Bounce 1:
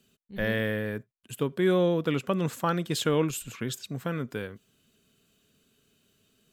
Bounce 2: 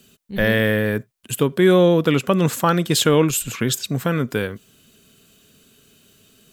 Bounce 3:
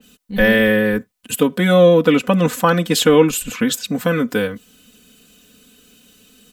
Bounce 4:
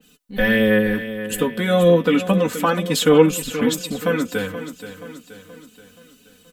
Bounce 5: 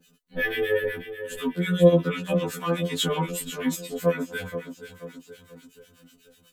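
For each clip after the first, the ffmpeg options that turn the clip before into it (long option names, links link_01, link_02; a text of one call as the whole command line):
ffmpeg -i in.wav -filter_complex "[0:a]highshelf=frequency=5700:gain=4.5,asplit=2[link_01][link_02];[link_02]alimiter=limit=-21.5dB:level=0:latency=1:release=422,volume=0.5dB[link_03];[link_01][link_03]amix=inputs=2:normalize=0,volume=6dB" out.wav
ffmpeg -i in.wav -af "aecho=1:1:4:0.93,adynamicequalizer=threshold=0.0251:dfrequency=3200:dqfactor=0.7:tfrequency=3200:tqfactor=0.7:attack=5:release=100:ratio=0.375:range=2.5:mode=cutabove:tftype=highshelf,volume=1dB" out.wav
ffmpeg -i in.wav -filter_complex "[0:a]flanger=delay=6.2:depth=6.8:regen=33:speed=0.31:shape=triangular,asplit=2[link_01][link_02];[link_02]aecho=0:1:477|954|1431|1908|2385:0.251|0.126|0.0628|0.0314|0.0157[link_03];[link_01][link_03]amix=inputs=2:normalize=0" out.wav
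ffmpeg -i in.wav -filter_complex "[0:a]acrossover=split=1200[link_01][link_02];[link_01]aeval=exprs='val(0)*(1-1/2+1/2*cos(2*PI*8.1*n/s))':channel_layout=same[link_03];[link_02]aeval=exprs='val(0)*(1-1/2-1/2*cos(2*PI*8.1*n/s))':channel_layout=same[link_04];[link_03][link_04]amix=inputs=2:normalize=0,afftfilt=real='re*2*eq(mod(b,4),0)':imag='im*2*eq(mod(b,4),0)':win_size=2048:overlap=0.75" out.wav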